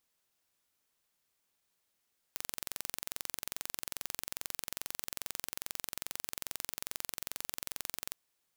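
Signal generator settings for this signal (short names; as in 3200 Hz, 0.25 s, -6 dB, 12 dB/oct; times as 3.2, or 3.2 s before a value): pulse train 22.4/s, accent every 0, -9.5 dBFS 5.77 s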